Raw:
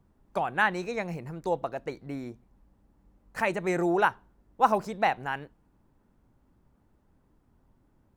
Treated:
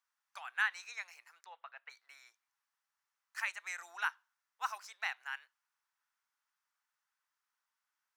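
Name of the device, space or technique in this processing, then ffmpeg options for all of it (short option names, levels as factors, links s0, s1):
headphones lying on a table: -filter_complex "[0:a]asplit=3[s0][s1][s2];[s0]afade=t=out:st=1.44:d=0.02[s3];[s1]lowpass=f=3100:w=0.5412,lowpass=f=3100:w=1.3066,afade=t=in:st=1.44:d=0.02,afade=t=out:st=1.89:d=0.02[s4];[s2]afade=t=in:st=1.89:d=0.02[s5];[s3][s4][s5]amix=inputs=3:normalize=0,highpass=f=1300:w=0.5412,highpass=f=1300:w=1.3066,equalizer=f=5700:t=o:w=0.59:g=5.5,volume=0.531"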